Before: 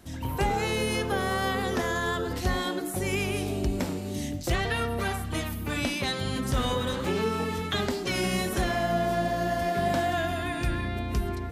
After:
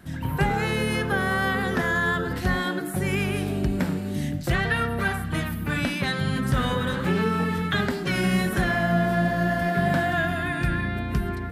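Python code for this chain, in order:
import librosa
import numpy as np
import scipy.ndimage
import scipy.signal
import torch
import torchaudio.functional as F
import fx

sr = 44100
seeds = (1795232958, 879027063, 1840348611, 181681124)

y = fx.graphic_eq_15(x, sr, hz=(160, 1600, 6300), db=(12, 9, -6))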